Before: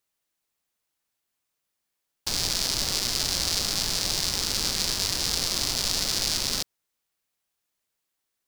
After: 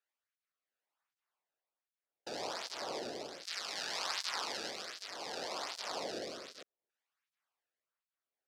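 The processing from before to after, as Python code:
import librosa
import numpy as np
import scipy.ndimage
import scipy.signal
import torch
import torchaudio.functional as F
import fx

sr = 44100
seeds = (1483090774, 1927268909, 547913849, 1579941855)

y = fx.rotary(x, sr, hz=0.65)
y = fx.filter_lfo_bandpass(y, sr, shape='saw_down', hz=0.29, low_hz=460.0, high_hz=1500.0, q=1.1)
y = fx.flanger_cancel(y, sr, hz=1.3, depth_ms=1.0)
y = y * librosa.db_to_amplitude(4.0)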